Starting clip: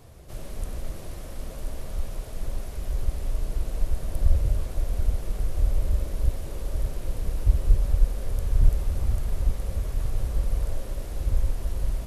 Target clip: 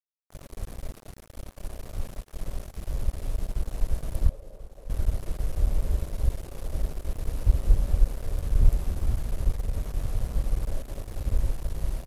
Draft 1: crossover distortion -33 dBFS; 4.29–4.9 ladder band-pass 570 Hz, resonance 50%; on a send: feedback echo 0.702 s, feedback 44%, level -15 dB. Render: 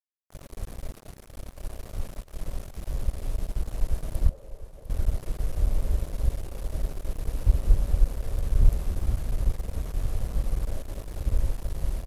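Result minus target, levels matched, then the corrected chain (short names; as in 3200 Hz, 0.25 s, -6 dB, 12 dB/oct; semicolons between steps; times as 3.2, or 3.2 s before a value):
echo 0.339 s early
crossover distortion -33 dBFS; 4.29–4.9 ladder band-pass 570 Hz, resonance 50%; on a send: feedback echo 1.041 s, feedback 44%, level -15 dB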